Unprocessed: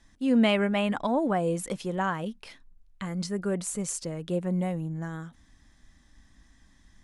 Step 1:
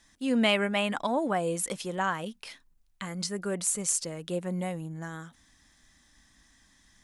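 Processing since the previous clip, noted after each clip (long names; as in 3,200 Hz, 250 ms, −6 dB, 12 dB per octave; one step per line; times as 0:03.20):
spectral tilt +2 dB per octave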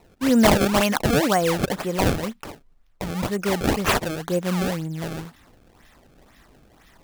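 sample-and-hold swept by an LFO 26×, swing 160% 2 Hz
level +8.5 dB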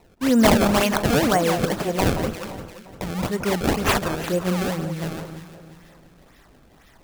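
delay that swaps between a low-pass and a high-pass 174 ms, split 1,500 Hz, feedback 62%, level −7.5 dB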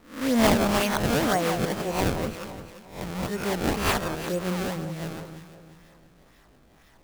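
peak hold with a rise ahead of every peak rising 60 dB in 0.43 s
level −6 dB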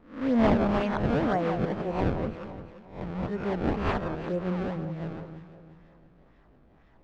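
head-to-tape spacing loss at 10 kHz 38 dB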